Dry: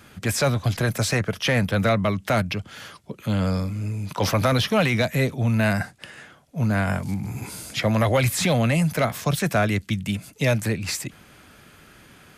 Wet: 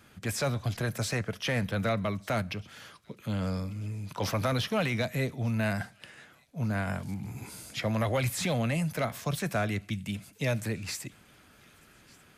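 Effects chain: thin delay 1.195 s, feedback 52%, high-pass 2800 Hz, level -23 dB; on a send at -20.5 dB: reverb, pre-delay 3 ms; on the sum: gain -8.5 dB

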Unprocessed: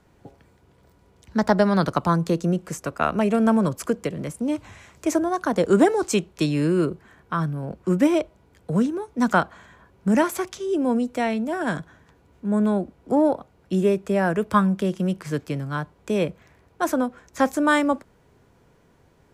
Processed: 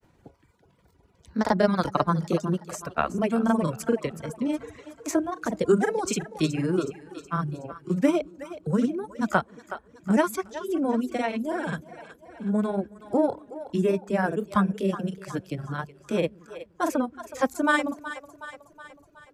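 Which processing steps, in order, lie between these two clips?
grains, spray 33 ms, pitch spread up and down by 0 st; split-band echo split 340 Hz, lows 0.172 s, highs 0.37 s, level -11 dB; reverb removal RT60 1.3 s; gain -1 dB

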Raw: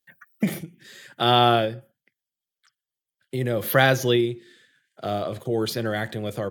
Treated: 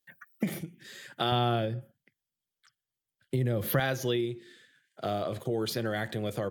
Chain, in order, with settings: 1.32–3.8 low shelf 240 Hz +11.5 dB; compressor 2.5:1, threshold -27 dBFS, peak gain reduction 11.5 dB; gain -1.5 dB

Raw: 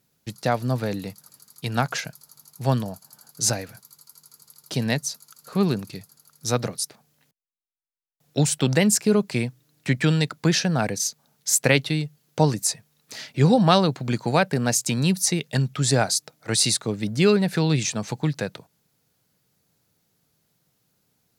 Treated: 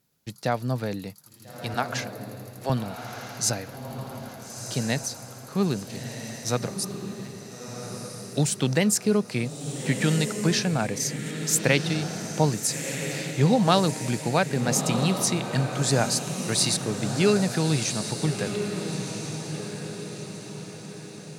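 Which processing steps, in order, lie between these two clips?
1.74–2.7 HPF 270 Hz 24 dB/oct; on a send: diffused feedback echo 1.344 s, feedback 48%, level -7 dB; on the sum: gain -3 dB

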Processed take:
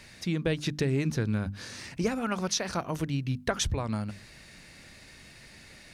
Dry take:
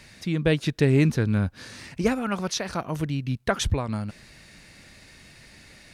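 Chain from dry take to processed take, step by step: dynamic EQ 5900 Hz, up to +4 dB, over -51 dBFS, Q 1.8; compressor 4:1, threshold -23 dBFS, peak gain reduction 7.5 dB; notches 50/100/150/200/250/300 Hz; gain -1 dB

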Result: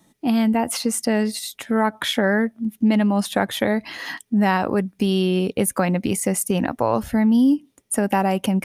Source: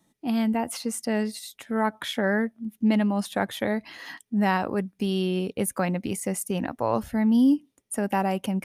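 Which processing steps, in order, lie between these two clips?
compressor 2:1, threshold -27 dBFS, peak gain reduction 6.5 dB; gain +9 dB

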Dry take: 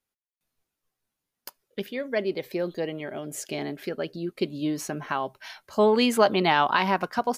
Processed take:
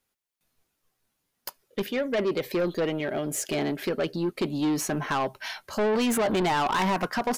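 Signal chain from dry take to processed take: dynamic EQ 4500 Hz, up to -5 dB, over -43 dBFS, Q 1.7; in parallel at -0.5 dB: negative-ratio compressor -24 dBFS, ratio -0.5; on the sum: soft clip -21 dBFS, distortion -9 dB

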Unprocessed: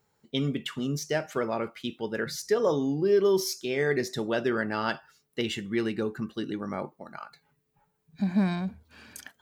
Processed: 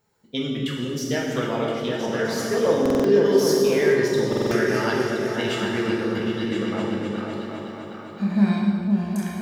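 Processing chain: on a send: repeats that get brighter 0.255 s, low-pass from 200 Hz, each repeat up 2 oct, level 0 dB; on the sum: non-linear reverb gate 0.46 s falling, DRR -2 dB; stuck buffer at 2.81/4.28, samples 2048, times 4

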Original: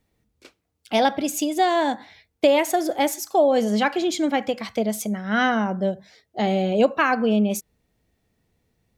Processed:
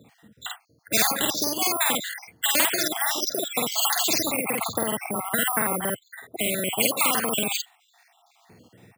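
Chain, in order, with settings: random spectral dropouts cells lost 70%; 4.34–6.8 LPF 1700 Hz 12 dB/oct; careless resampling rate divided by 4×, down filtered, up hold; HPF 110 Hz 24 dB/oct; doubler 49 ms -2 dB; spectral compressor 4:1; gain -1 dB

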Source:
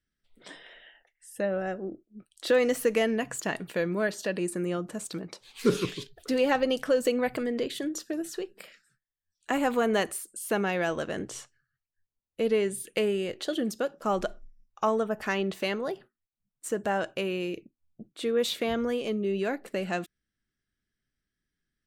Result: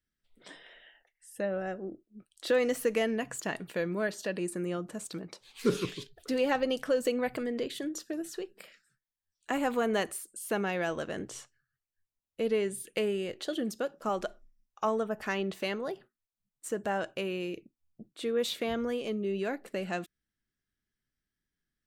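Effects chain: 14.09–14.85 low shelf 180 Hz -8 dB; gain -3.5 dB

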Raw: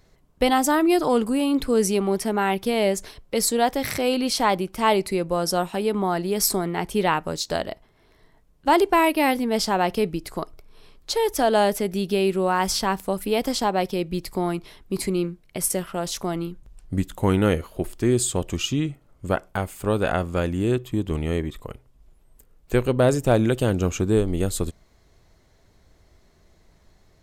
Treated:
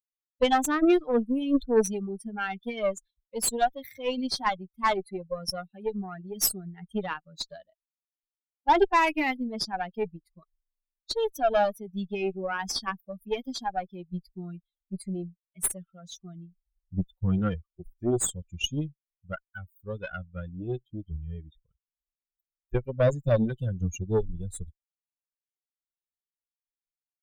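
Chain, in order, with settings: per-bin expansion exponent 3; added harmonics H 6 -21 dB, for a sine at -11.5 dBFS; gain +1.5 dB

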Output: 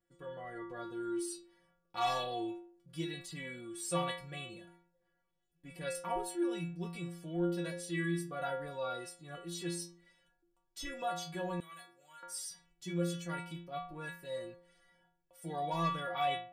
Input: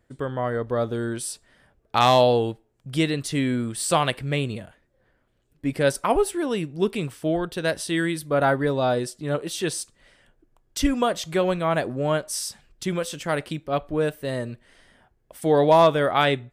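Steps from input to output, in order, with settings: metallic resonator 170 Hz, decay 0.61 s, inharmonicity 0.008; 11.6–12.23 pre-emphasis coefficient 0.97; transient shaper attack -2 dB, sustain +2 dB; gain +1.5 dB

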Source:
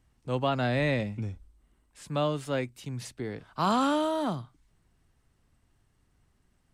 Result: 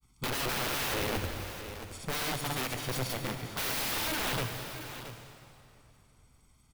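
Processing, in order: Butterworth band-stop 1800 Hz, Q 6.5; high shelf 3100 Hz +10.5 dB; comb 0.9 ms, depth 84%; soft clip -14 dBFS, distortion -21 dB; grains 0.1 s, grains 20/s; wrapped overs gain 27.5 dB; echo 0.674 s -12 dB; on a send at -6 dB: reverb RT60 2.9 s, pre-delay 36 ms; on the sum: dynamic EQ 7500 Hz, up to -6 dB, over -52 dBFS, Q 1.2

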